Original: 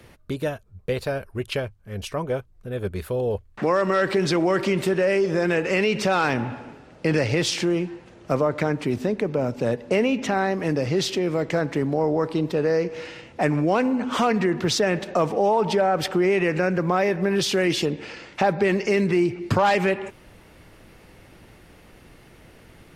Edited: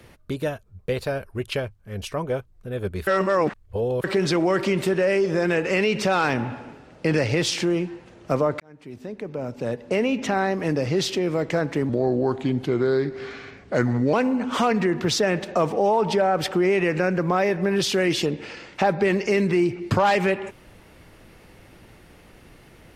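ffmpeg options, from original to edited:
-filter_complex "[0:a]asplit=6[s0][s1][s2][s3][s4][s5];[s0]atrim=end=3.072[s6];[s1]atrim=start=3.068:end=4.042,asetpts=PTS-STARTPTS,areverse[s7];[s2]atrim=start=4.038:end=8.6,asetpts=PTS-STARTPTS,afade=t=out:st=4.558:d=0.004:c=hsin[s8];[s3]atrim=start=8.6:end=11.894,asetpts=PTS-STARTPTS,afade=t=in:d=1.68[s9];[s4]atrim=start=11.89:end=13.73,asetpts=PTS-STARTPTS,asetrate=36162,aresample=44100,atrim=end_sample=98956,asetpts=PTS-STARTPTS[s10];[s5]atrim=start=13.726[s11];[s6][s7]acrossfade=d=0.004:c1=hsin:c2=hsin[s12];[s8][s9]concat=n=2:v=0:a=1[s13];[s12][s13]acrossfade=d=0.004:c1=hsin:c2=hsin[s14];[s14][s10]acrossfade=d=0.004:c1=hsin:c2=hsin[s15];[s15][s11]acrossfade=d=0.004:c1=hsin:c2=hsin"

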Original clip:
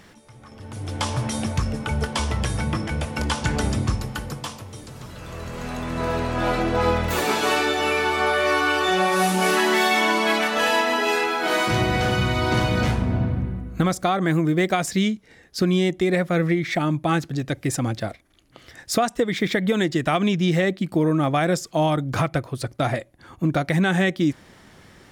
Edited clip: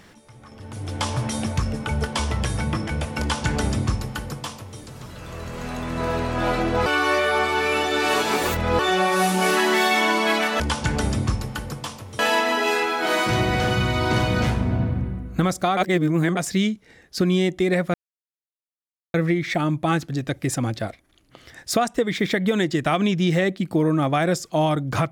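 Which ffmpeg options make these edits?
-filter_complex "[0:a]asplit=8[s0][s1][s2][s3][s4][s5][s6][s7];[s0]atrim=end=6.862[s8];[s1]atrim=start=6.858:end=8.792,asetpts=PTS-STARTPTS,areverse[s9];[s2]atrim=start=8.788:end=10.602[s10];[s3]atrim=start=3.198:end=4.792[s11];[s4]atrim=start=10.598:end=14.182[s12];[s5]atrim=start=14.178:end=14.782,asetpts=PTS-STARTPTS,areverse[s13];[s6]atrim=start=14.778:end=16.35,asetpts=PTS-STARTPTS,afade=t=out:st=1.568:d=0.004:c=hsin,apad=pad_dur=1.2[s14];[s7]atrim=start=16.35,asetpts=PTS-STARTPTS,afade=t=in:d=0.004:c=hsin[s15];[s8][s9]acrossfade=d=0.004:c1=hsin:c2=hsin[s16];[s16][s10]acrossfade=d=0.004:c1=hsin:c2=hsin[s17];[s17][s11]acrossfade=d=0.004:c1=hsin:c2=hsin[s18];[s18][s12]acrossfade=d=0.004:c1=hsin:c2=hsin[s19];[s19][s13]acrossfade=d=0.004:c1=hsin:c2=hsin[s20];[s14][s15]concat=n=2:v=0:a=1[s21];[s20][s21]acrossfade=d=0.004:c1=hsin:c2=hsin"

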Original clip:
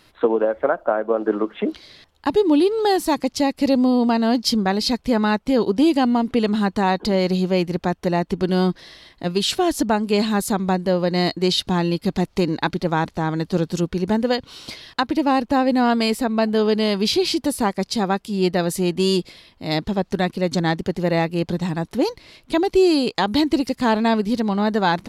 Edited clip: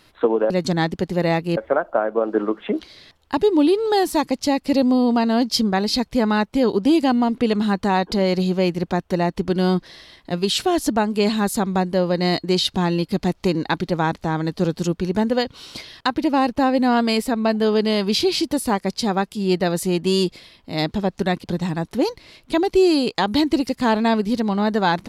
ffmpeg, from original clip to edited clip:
-filter_complex "[0:a]asplit=4[s0][s1][s2][s3];[s0]atrim=end=0.502[s4];[s1]atrim=start=20.368:end=21.442[s5];[s2]atrim=start=0.498:end=20.372[s6];[s3]atrim=start=21.438[s7];[s4][s5]acrossfade=d=0.004:c1=hsin:c2=hsin[s8];[s8][s6]acrossfade=d=0.004:c1=hsin:c2=hsin[s9];[s9][s7]acrossfade=d=0.004:c1=hsin:c2=hsin"

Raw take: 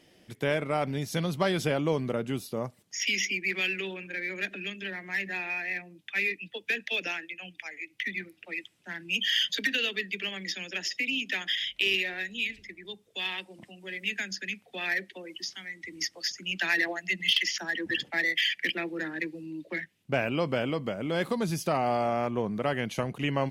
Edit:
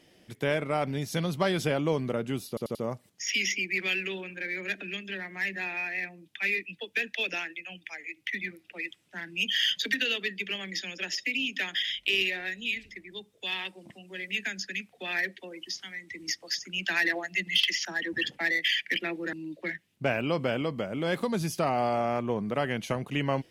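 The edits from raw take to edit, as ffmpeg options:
-filter_complex "[0:a]asplit=5[s0][s1][s2][s3][s4];[s0]atrim=end=2.572[s5];[s1]atrim=start=2.478:end=2.572[s6];[s2]atrim=start=2.478:end=2.572[s7];[s3]atrim=start=2.478:end=19.062[s8];[s4]atrim=start=19.408[s9];[s5][s6]acrossfade=d=0.004:c1=hsin:c2=hsin[s10];[s10][s7]acrossfade=d=0.004:c1=hsin:c2=hsin[s11];[s11][s8]acrossfade=d=0.004:c1=hsin:c2=hsin[s12];[s12][s9]acrossfade=d=0.004:c1=hsin:c2=hsin"

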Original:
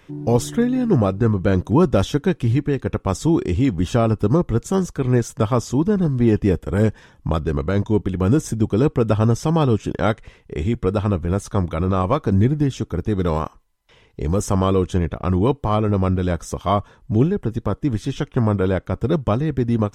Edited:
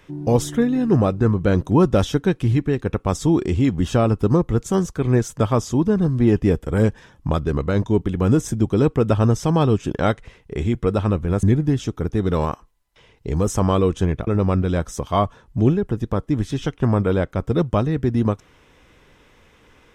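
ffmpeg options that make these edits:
-filter_complex "[0:a]asplit=3[s0][s1][s2];[s0]atrim=end=11.432[s3];[s1]atrim=start=12.358:end=15.202[s4];[s2]atrim=start=15.808[s5];[s3][s4]acrossfade=d=0.004:c1=hsin:c2=hsin[s6];[s6][s5]acrossfade=d=0.004:c1=hsin:c2=hsin"

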